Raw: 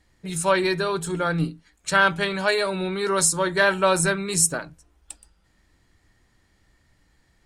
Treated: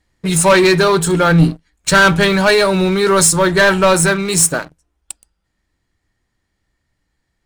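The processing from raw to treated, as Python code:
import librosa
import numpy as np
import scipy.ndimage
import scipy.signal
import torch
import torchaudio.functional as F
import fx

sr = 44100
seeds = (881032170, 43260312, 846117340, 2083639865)

y = fx.rider(x, sr, range_db=5, speed_s=2.0)
y = fx.leveller(y, sr, passes=3)
y = fx.low_shelf(y, sr, hz=140.0, db=7.5, at=(1.31, 3.94))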